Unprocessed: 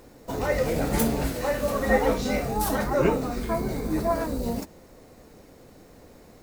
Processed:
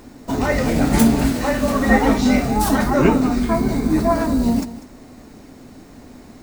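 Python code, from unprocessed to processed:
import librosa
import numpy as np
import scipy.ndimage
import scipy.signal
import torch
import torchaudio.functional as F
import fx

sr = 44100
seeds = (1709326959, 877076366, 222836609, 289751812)

p1 = fx.graphic_eq_31(x, sr, hz=(250, 500, 12500), db=(9, -9, -8))
p2 = p1 + fx.echo_single(p1, sr, ms=196, db=-15.5, dry=0)
y = p2 * 10.0 ** (7.5 / 20.0)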